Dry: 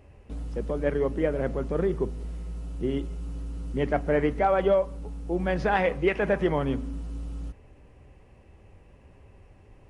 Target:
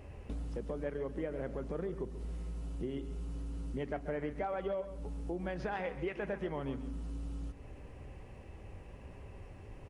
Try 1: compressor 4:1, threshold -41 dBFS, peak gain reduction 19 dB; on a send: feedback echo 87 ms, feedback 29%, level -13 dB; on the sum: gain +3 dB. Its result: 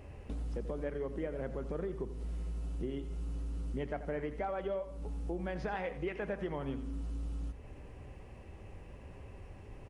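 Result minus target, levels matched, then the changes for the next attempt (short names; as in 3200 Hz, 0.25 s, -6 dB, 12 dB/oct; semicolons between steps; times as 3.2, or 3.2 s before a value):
echo 49 ms early
change: feedback echo 0.136 s, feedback 29%, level -13 dB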